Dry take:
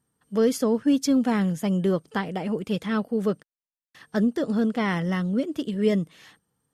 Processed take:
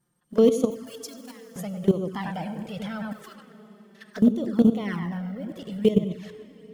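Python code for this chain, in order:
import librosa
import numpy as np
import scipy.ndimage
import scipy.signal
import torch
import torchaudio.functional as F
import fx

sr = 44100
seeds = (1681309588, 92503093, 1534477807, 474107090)

p1 = fx.block_float(x, sr, bits=7)
p2 = fx.rider(p1, sr, range_db=5, speed_s=2.0)
p3 = p1 + F.gain(torch.from_numpy(p2), -0.5).numpy()
p4 = fx.highpass(p3, sr, hz=1300.0, slope=24, at=(3.11, 4.16), fade=0.02)
p5 = fx.peak_eq(p4, sr, hz=5100.0, db=-11.0, octaves=2.9, at=(4.96, 5.49))
p6 = p5 + fx.echo_filtered(p5, sr, ms=98, feedback_pct=33, hz=2600.0, wet_db=-7.0, dry=0)
p7 = fx.level_steps(p6, sr, step_db=14)
p8 = fx.differentiator(p7, sr, at=(0.7, 1.56))
p9 = fx.rev_plate(p8, sr, seeds[0], rt60_s=4.3, hf_ratio=0.95, predelay_ms=0, drr_db=12.5)
y = fx.env_flanger(p9, sr, rest_ms=5.7, full_db=-19.0)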